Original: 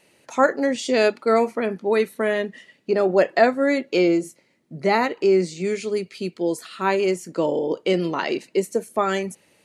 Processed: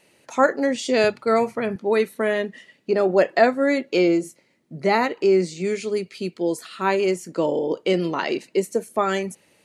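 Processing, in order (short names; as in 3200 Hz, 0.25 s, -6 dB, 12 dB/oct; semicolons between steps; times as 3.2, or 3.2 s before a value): 1.04–1.76 resonant low shelf 170 Hz +13 dB, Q 1.5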